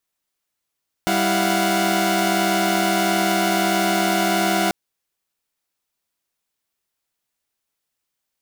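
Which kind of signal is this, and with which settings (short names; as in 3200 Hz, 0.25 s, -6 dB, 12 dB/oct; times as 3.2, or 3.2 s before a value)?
chord G3/E4/F5/F#5 saw, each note -20.5 dBFS 3.64 s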